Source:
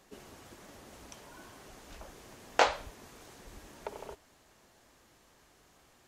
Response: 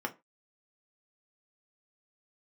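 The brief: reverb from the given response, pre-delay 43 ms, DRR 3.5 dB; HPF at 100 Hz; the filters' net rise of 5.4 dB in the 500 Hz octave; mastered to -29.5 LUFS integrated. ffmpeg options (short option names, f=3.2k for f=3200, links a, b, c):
-filter_complex "[0:a]highpass=100,equalizer=f=500:t=o:g=6.5,asplit=2[a][b];[1:a]atrim=start_sample=2205,adelay=43[c];[b][c]afir=irnorm=-1:irlink=0,volume=-8dB[d];[a][d]amix=inputs=2:normalize=0,volume=-1dB"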